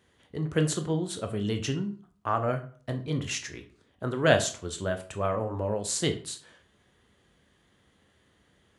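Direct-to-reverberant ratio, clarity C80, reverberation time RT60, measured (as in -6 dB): 6.0 dB, 17.0 dB, 0.45 s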